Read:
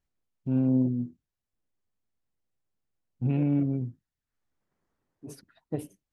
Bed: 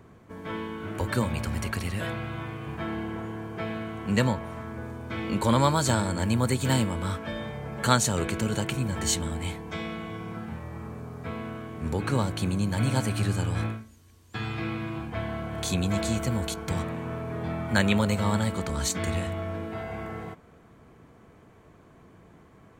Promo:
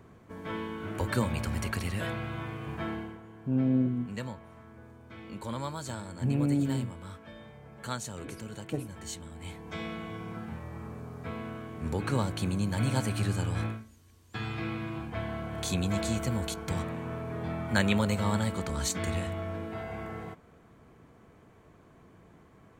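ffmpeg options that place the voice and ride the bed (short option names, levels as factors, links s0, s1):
-filter_complex "[0:a]adelay=3000,volume=0.794[s0];[1:a]volume=2.82,afade=t=out:st=2.87:d=0.32:silence=0.251189,afade=t=in:st=9.34:d=0.49:silence=0.281838[s1];[s0][s1]amix=inputs=2:normalize=0"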